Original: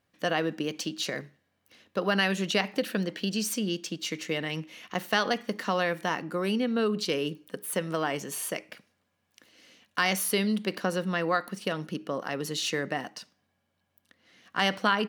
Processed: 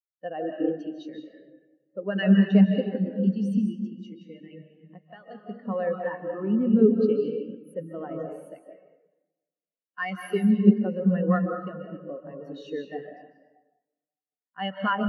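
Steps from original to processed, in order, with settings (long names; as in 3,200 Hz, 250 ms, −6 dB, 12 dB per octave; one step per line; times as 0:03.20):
0:03.55–0:05.35: downward compressor 3 to 1, threshold −30 dBFS, peak gain reduction 8 dB
convolution reverb RT60 2.8 s, pre-delay 105 ms, DRR −1.5 dB
every bin expanded away from the loudest bin 2.5 to 1
level +4.5 dB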